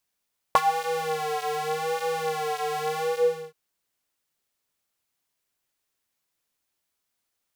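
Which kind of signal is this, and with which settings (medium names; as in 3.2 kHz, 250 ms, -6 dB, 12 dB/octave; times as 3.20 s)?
synth patch with vibrato D#3, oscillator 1 square, oscillator 2 square, interval 0 st, detune 19 cents, oscillator 2 level -2.5 dB, sub -28 dB, noise -22 dB, filter highpass, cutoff 370 Hz, Q 9.8, filter envelope 1.5 oct, filter sustain 45%, attack 1 ms, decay 0.06 s, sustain -10.5 dB, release 0.51 s, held 2.47 s, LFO 0.84 Hz, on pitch 68 cents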